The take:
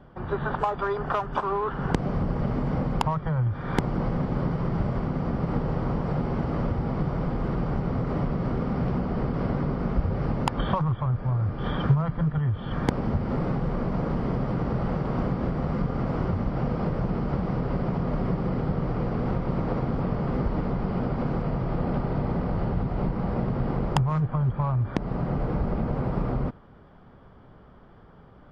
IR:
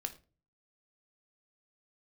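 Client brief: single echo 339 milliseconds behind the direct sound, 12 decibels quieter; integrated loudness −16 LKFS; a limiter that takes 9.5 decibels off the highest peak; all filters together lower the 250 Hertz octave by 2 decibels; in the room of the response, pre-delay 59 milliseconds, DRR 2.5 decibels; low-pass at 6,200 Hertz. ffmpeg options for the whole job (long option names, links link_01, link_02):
-filter_complex "[0:a]lowpass=6200,equalizer=frequency=250:width_type=o:gain=-3,alimiter=limit=-20dB:level=0:latency=1,aecho=1:1:339:0.251,asplit=2[link_01][link_02];[1:a]atrim=start_sample=2205,adelay=59[link_03];[link_02][link_03]afir=irnorm=-1:irlink=0,volume=-2dB[link_04];[link_01][link_04]amix=inputs=2:normalize=0,volume=12dB"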